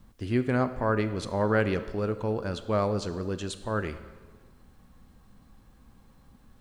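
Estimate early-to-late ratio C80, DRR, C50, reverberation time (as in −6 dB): 14.5 dB, 11.0 dB, 12.5 dB, 1.5 s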